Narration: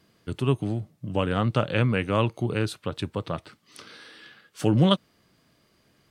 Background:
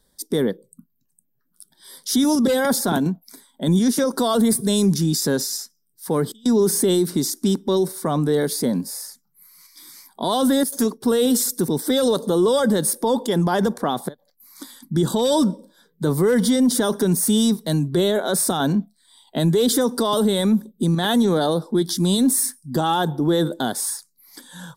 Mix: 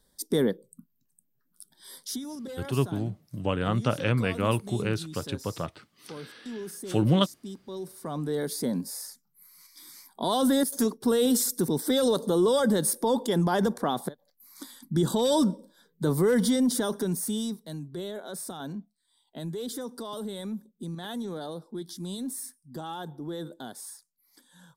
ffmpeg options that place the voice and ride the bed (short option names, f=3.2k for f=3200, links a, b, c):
-filter_complex "[0:a]adelay=2300,volume=-2.5dB[a];[1:a]volume=12dB,afade=t=out:st=1.94:d=0.26:silence=0.141254,afade=t=in:st=7.67:d=1.43:silence=0.16788,afade=t=out:st=16.33:d=1.34:silence=0.251189[b];[a][b]amix=inputs=2:normalize=0"